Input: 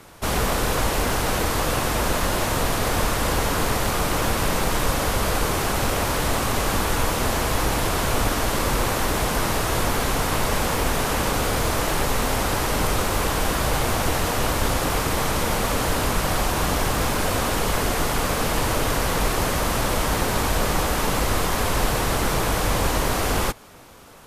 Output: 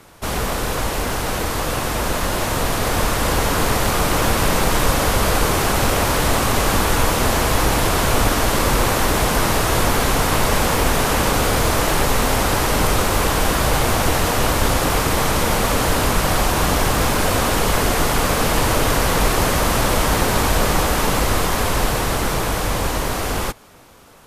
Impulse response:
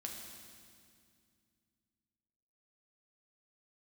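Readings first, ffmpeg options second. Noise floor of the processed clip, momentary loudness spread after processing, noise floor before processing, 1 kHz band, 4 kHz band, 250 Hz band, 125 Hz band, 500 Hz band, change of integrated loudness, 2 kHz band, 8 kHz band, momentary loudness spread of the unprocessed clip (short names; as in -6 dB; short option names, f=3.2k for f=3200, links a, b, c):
-23 dBFS, 4 LU, -24 dBFS, +4.5 dB, +4.5 dB, +4.5 dB, +4.5 dB, +4.0 dB, +4.5 dB, +4.5 dB, +4.5 dB, 0 LU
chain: -af "dynaudnorm=f=540:g=11:m=6dB"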